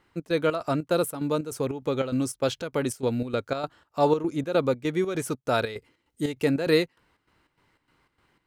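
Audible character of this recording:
chopped level 3.3 Hz, depth 65%, duty 65%

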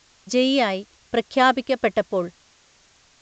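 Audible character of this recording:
tremolo saw down 1.1 Hz, depth 45%
a quantiser's noise floor 10 bits, dither triangular
A-law companding

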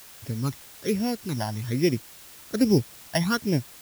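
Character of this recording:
a buzz of ramps at a fixed pitch in blocks of 8 samples
phaser sweep stages 12, 1.2 Hz, lowest notch 400–1,300 Hz
a quantiser's noise floor 8 bits, dither triangular

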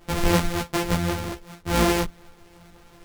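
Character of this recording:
a buzz of ramps at a fixed pitch in blocks of 256 samples
tremolo saw up 2.6 Hz, depth 35%
a quantiser's noise floor 10 bits, dither none
a shimmering, thickened sound

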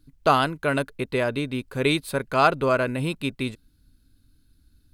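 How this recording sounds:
background noise floor −62 dBFS
spectral slope −4.0 dB per octave

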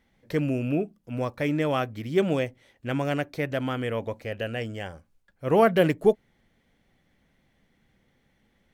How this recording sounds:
background noise floor −69 dBFS
spectral slope −5.5 dB per octave

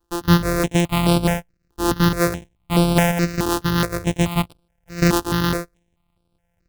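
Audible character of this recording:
a buzz of ramps at a fixed pitch in blocks of 256 samples
notches that jump at a steady rate 4.7 Hz 590–6,500 Hz

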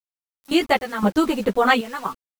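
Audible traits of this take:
sample-and-hold tremolo 3.9 Hz, depth 95%
a quantiser's noise floor 8 bits, dither none
a shimmering, thickened sound

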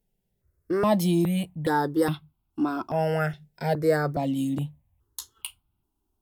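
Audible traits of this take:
notches that jump at a steady rate 2.4 Hz 310–1,800 Hz

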